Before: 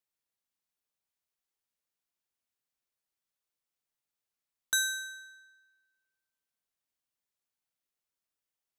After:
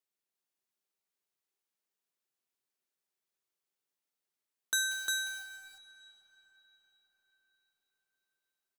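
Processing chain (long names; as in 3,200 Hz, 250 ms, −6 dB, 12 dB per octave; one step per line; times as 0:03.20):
high-pass filter 140 Hz 24 dB per octave
parametric band 390 Hz +8 dB 0.2 octaves
0:04.91–0:05.43: log-companded quantiser 4 bits
single-tap delay 353 ms −3 dB
convolution reverb RT60 5.2 s, pre-delay 5 ms, DRR 13.5 dB
level −2.5 dB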